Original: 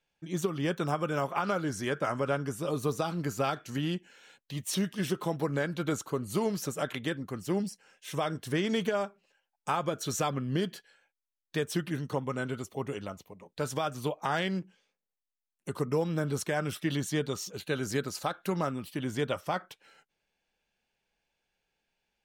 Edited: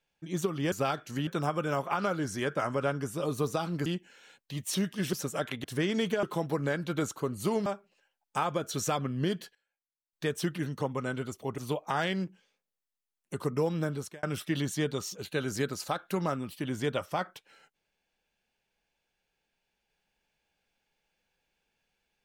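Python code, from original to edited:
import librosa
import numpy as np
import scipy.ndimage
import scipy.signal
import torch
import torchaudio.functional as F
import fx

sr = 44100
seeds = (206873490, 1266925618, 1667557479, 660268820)

y = fx.edit(x, sr, fx.move(start_s=3.31, length_s=0.55, to_s=0.72),
    fx.move(start_s=5.13, length_s=1.43, to_s=8.98),
    fx.cut(start_s=7.07, length_s=1.32),
    fx.fade_down_up(start_s=10.65, length_s=1.02, db=-18.5, fade_s=0.22, curve='log'),
    fx.cut(start_s=12.9, length_s=1.03),
    fx.fade_out_span(start_s=16.17, length_s=0.41), tone=tone)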